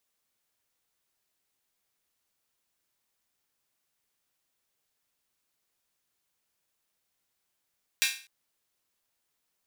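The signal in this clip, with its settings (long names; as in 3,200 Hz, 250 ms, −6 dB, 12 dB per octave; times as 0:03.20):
open synth hi-hat length 0.25 s, high-pass 2,200 Hz, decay 0.39 s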